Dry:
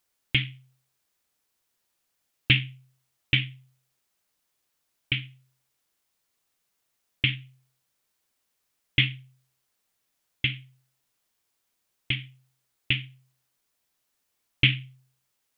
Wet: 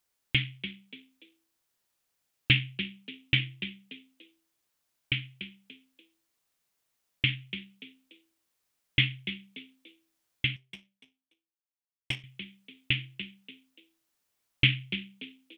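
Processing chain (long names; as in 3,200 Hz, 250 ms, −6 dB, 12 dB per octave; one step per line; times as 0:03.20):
echo with shifted repeats 290 ms, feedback 32%, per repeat +66 Hz, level −11.5 dB
0:10.56–0:12.24: power curve on the samples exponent 1.4
level −2.5 dB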